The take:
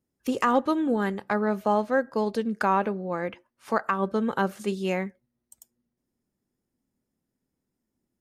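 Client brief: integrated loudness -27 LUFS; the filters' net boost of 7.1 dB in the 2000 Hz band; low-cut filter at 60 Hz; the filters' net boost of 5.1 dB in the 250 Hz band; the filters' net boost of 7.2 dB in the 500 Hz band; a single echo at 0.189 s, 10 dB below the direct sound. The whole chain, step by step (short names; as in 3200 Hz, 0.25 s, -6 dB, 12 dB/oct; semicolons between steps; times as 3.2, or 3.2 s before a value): HPF 60 Hz; bell 250 Hz +4.5 dB; bell 500 Hz +7 dB; bell 2000 Hz +9 dB; echo 0.189 s -10 dB; gain -6.5 dB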